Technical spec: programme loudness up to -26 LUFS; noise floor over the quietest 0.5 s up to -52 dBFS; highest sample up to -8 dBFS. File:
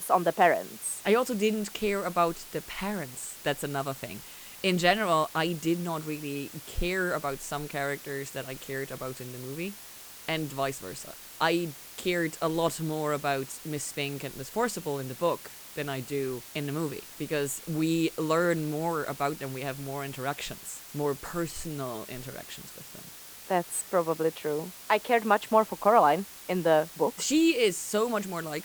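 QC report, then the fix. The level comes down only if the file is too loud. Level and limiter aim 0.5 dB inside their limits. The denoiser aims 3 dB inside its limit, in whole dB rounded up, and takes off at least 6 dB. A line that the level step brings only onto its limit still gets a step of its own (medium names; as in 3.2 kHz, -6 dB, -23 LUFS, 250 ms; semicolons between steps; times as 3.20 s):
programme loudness -29.5 LUFS: pass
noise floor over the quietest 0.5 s -47 dBFS: fail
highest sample -8.5 dBFS: pass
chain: noise reduction 8 dB, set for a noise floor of -47 dBFS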